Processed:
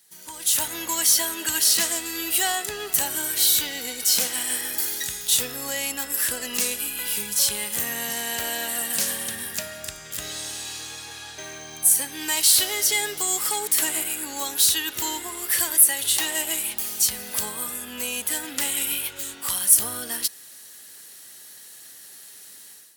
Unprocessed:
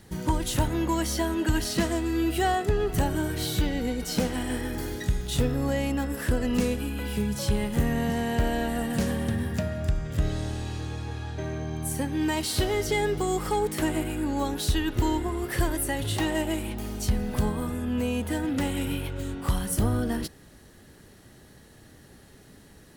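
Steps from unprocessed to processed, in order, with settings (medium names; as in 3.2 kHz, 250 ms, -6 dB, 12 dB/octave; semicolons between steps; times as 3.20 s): differentiator; level rider gain up to 14 dB; in parallel at -12 dB: hard clipper -15.5 dBFS, distortion -13 dB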